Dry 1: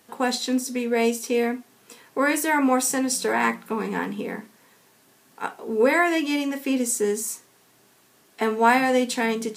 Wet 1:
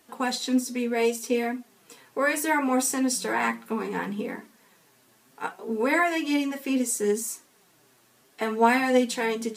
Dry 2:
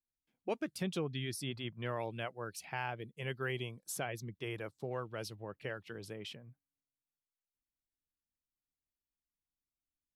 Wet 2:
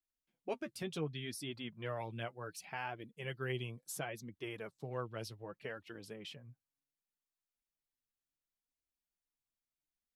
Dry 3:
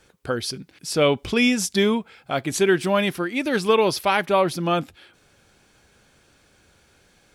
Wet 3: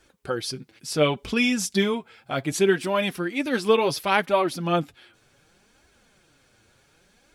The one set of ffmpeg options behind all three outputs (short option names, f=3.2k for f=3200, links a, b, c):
-af "flanger=delay=2.7:depth=6.5:regen=25:speed=0.68:shape=triangular,volume=1dB"